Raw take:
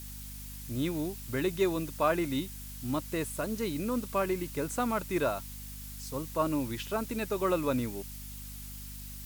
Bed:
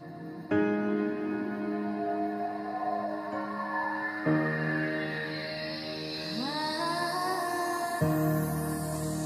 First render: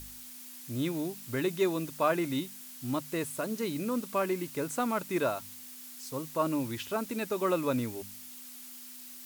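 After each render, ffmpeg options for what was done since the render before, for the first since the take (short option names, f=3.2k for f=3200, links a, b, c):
-af "bandreject=f=50:t=h:w=4,bandreject=f=100:t=h:w=4,bandreject=f=150:t=h:w=4,bandreject=f=200:t=h:w=4"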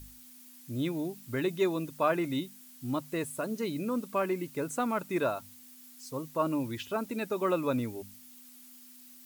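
-af "afftdn=nr=8:nf=-47"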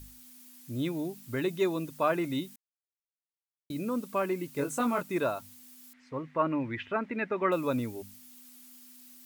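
-filter_complex "[0:a]asettb=1/sr,asplit=3[a][b][c];[a]atrim=end=4.544[d];[b]atrim=start=4.54:end=5.02,asetpts=PTS-STARTPTS,afade=t=in:d=0.004:c=qsin,afade=t=out:st=0.476:d=0.004:c=qsin,asplit=2[e][f];[f]adelay=21,volume=-3dB[g];[e][g]amix=inputs=2:normalize=0,atrim=end_sample=21168[h];[c]atrim=start=5.016[i];[d][h]acrossfade=d=0.004:c1=hsin:c2=qsin[j];[j][i]acrossfade=d=0.004:c1=qsin:c2=hsin,asettb=1/sr,asplit=3[k][l][m];[k]atrim=end=5.934[n];[l]atrim=start=5.93:end=7.52,asetpts=PTS-STARTPTS,afade=t=in:d=0.004:c=qsin,afade=t=out:st=1.586:d=0.004:c=qsin,lowpass=f=2k:t=q:w=3.4[o];[m]atrim=start=7.516[p];[n][o]acrossfade=d=0.004:c1=hsin:c2=qsin[q];[q][p]acrossfade=d=0.004:c1=qsin:c2=hsin,asplit=3[r][s][t];[r]atrim=end=2.56,asetpts=PTS-STARTPTS,afade=t=out:st=2.556:d=0.004:c=hsin[u];[s]atrim=start=2.56:end=3.7,asetpts=PTS-STARTPTS,volume=0[v];[t]atrim=start=3.7,asetpts=PTS-STARTPTS,afade=t=in:d=0.004:c=hsin[w];[u][v][w]concat=n=3:v=0:a=1"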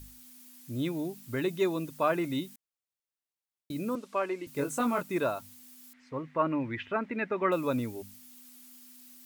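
-filter_complex "[0:a]asettb=1/sr,asplit=3[a][b][c];[a]atrim=end=3.954[d];[b]atrim=start=3.95:end=4.47,asetpts=PTS-STARTPTS,afade=t=in:d=0.004:c=qsin,afade=t=out:st=0.516:d=0.004:c=qsin,highpass=350,lowpass=6.5k[e];[c]atrim=start=4.466[f];[d][e]acrossfade=d=0.004:c1=hsin:c2=qsin[g];[g][f]acrossfade=d=0.004:c1=qsin:c2=hsin"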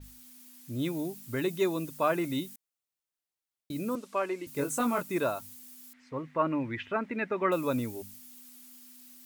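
-af "adynamicequalizer=threshold=0.00224:dfrequency=5600:dqfactor=0.7:tfrequency=5600:tqfactor=0.7:attack=5:release=100:ratio=0.375:range=2.5:mode=boostabove:tftype=highshelf"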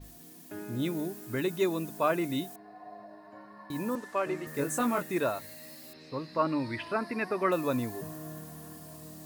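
-filter_complex "[1:a]volume=-15.5dB[a];[0:a][a]amix=inputs=2:normalize=0"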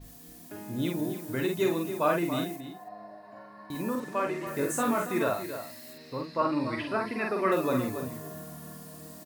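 -filter_complex "[0:a]asplit=2[a][b];[b]adelay=47,volume=-3.5dB[c];[a][c]amix=inputs=2:normalize=0,asplit=2[d][e];[e]adelay=279.9,volume=-10dB,highshelf=f=4k:g=-6.3[f];[d][f]amix=inputs=2:normalize=0"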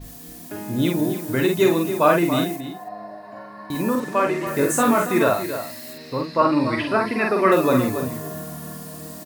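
-af "volume=9.5dB"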